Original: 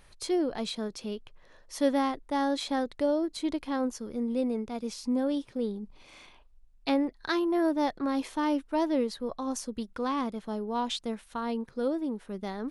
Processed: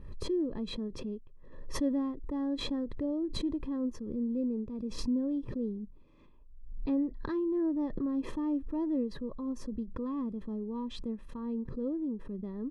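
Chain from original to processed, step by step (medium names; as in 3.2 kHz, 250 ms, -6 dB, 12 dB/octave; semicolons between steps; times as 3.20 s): boxcar filter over 60 samples; swell ahead of each attack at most 54 dB/s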